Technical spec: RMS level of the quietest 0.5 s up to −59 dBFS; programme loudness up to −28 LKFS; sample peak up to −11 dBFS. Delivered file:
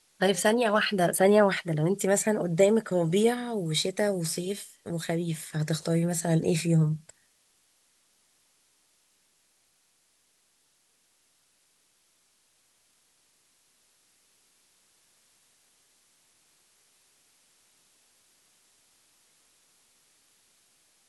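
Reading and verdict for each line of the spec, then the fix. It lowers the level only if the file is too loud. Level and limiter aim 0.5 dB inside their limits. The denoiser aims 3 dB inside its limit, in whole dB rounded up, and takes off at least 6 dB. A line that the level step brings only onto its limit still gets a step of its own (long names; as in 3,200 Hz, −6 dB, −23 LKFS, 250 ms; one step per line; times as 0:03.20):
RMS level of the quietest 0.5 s −69 dBFS: in spec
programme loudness −26.0 LKFS: out of spec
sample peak −10.0 dBFS: out of spec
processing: level −2.5 dB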